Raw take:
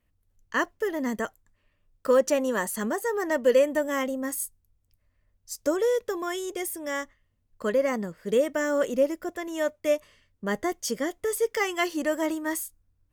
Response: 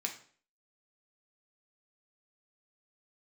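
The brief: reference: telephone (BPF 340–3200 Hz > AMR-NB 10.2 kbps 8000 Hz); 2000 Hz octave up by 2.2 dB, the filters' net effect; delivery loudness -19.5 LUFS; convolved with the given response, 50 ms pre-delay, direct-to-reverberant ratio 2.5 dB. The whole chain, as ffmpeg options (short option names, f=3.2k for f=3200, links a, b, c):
-filter_complex "[0:a]equalizer=f=2k:t=o:g=3,asplit=2[a][b];[1:a]atrim=start_sample=2205,adelay=50[c];[b][c]afir=irnorm=-1:irlink=0,volume=-4dB[d];[a][d]amix=inputs=2:normalize=0,highpass=340,lowpass=3.2k,volume=8dB" -ar 8000 -c:a libopencore_amrnb -b:a 10200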